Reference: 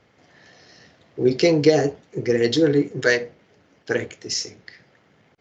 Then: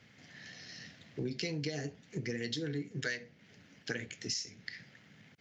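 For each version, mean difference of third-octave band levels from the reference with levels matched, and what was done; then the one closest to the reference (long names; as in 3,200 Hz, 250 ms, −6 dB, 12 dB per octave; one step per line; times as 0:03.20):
7.0 dB: high-pass filter 100 Hz
flat-topped bell 640 Hz −11 dB 2.3 octaves
downward compressor 5 to 1, threshold −38 dBFS, peak gain reduction 18.5 dB
level +2 dB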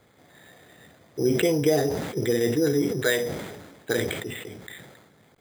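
9.5 dB: downward compressor 2 to 1, threshold −24 dBFS, peak gain reduction 8.5 dB
bad sample-rate conversion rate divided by 8×, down filtered, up hold
level that may fall only so fast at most 44 dB per second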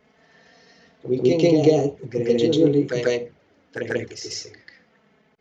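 4.0 dB: high-shelf EQ 4,600 Hz −6 dB
flanger swept by the level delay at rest 4.8 ms, full sweep at −18 dBFS
on a send: backwards echo 141 ms −4 dB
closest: third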